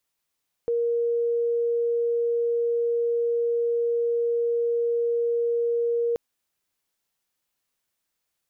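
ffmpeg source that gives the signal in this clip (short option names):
-f lavfi -i "sine=f=470:d=5.48:r=44100,volume=-2.94dB"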